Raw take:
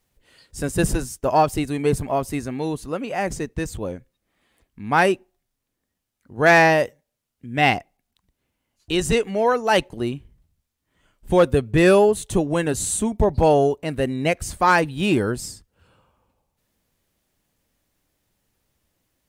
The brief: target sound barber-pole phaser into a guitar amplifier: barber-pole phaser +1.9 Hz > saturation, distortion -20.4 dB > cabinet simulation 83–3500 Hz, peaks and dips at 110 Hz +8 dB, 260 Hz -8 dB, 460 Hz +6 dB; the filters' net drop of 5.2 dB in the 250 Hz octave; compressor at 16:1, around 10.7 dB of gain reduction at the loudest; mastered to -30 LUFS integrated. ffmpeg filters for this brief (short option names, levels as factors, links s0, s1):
-filter_complex "[0:a]equalizer=f=250:t=o:g=-6.5,acompressor=threshold=0.0794:ratio=16,asplit=2[s0][s1];[s1]afreqshift=1.9[s2];[s0][s2]amix=inputs=2:normalize=1,asoftclip=threshold=0.1,highpass=83,equalizer=f=110:t=q:w=4:g=8,equalizer=f=260:t=q:w=4:g=-8,equalizer=f=460:t=q:w=4:g=6,lowpass=f=3500:w=0.5412,lowpass=f=3500:w=1.3066,volume=1.19"